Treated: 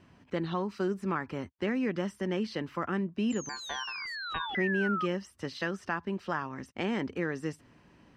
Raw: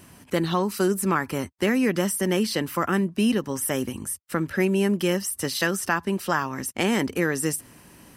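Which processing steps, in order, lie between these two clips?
3.3–5.06 painted sound fall 1200–7400 Hz -24 dBFS; 3.49–4.55 ring modulator 1300 Hz; air absorption 180 m; gain -8 dB

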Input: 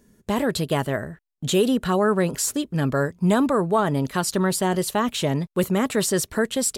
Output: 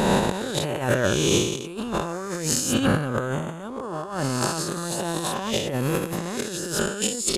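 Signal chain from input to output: spectral swells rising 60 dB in 1.73 s; negative-ratio compressor -24 dBFS, ratio -0.5; speed mistake 48 kHz file played as 44.1 kHz

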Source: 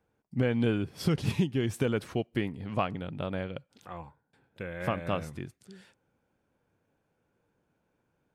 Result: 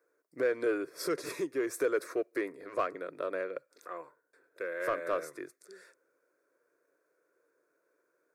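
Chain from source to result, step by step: HPF 280 Hz 24 dB/oct; fixed phaser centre 820 Hz, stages 6; in parallel at -3 dB: soft clip -34.5 dBFS, distortion -8 dB

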